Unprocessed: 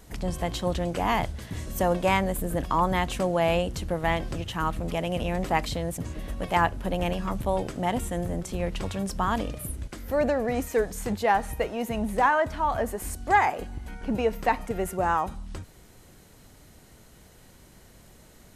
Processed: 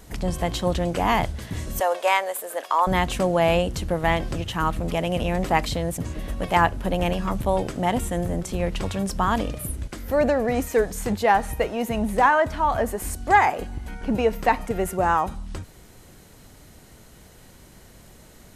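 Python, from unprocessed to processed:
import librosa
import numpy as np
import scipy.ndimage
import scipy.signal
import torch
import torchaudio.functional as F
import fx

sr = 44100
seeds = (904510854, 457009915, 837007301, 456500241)

y = fx.highpass(x, sr, hz=510.0, slope=24, at=(1.8, 2.87))
y = y * 10.0 ** (4.0 / 20.0)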